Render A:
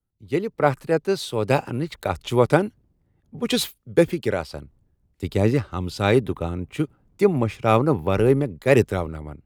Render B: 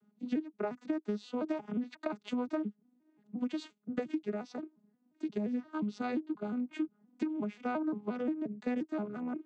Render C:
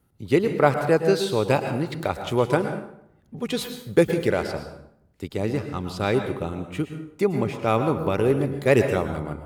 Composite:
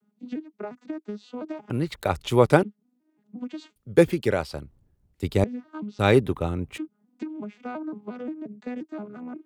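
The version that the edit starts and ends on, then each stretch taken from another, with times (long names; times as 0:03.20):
B
0:01.70–0:02.63: punch in from A
0:03.76–0:05.44: punch in from A
0:05.99–0:06.78: punch in from A
not used: C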